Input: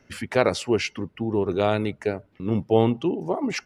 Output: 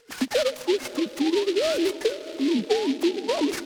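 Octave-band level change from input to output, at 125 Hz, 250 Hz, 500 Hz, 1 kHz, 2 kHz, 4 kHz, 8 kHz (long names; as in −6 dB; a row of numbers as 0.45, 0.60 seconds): below −20 dB, +1.0 dB, −0.5 dB, −5.5 dB, −2.0 dB, +5.0 dB, +3.5 dB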